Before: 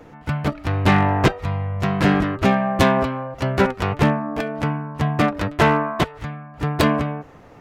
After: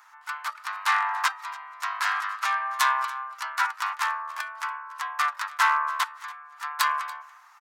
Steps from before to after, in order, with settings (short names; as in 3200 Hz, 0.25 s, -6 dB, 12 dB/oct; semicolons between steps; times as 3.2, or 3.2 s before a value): steep high-pass 1000 Hz 48 dB/oct; bell 2700 Hz -10 dB 1.3 oct; on a send: echo 0.285 s -20 dB; on the sum: gain +4 dB